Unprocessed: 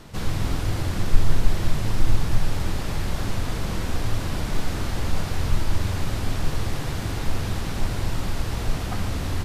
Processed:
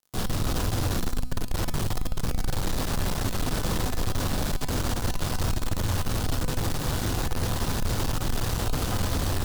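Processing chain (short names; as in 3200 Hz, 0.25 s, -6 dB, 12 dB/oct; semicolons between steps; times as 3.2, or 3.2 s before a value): added noise white -45 dBFS; fuzz box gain 28 dB, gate -32 dBFS; bell 2200 Hz -5.5 dB 0.69 oct; resonator 250 Hz, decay 1.2 s, mix 70%; de-hum 62.52 Hz, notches 3; gain +3 dB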